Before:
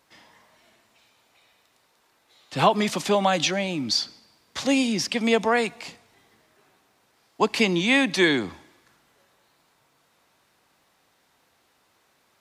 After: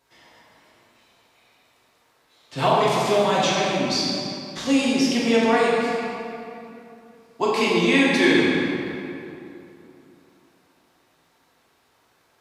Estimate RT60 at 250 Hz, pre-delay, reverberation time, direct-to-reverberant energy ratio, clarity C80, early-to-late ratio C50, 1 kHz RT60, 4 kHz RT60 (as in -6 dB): 3.1 s, 3 ms, 2.8 s, -7.0 dB, -1.0 dB, -2.5 dB, 2.8 s, 1.8 s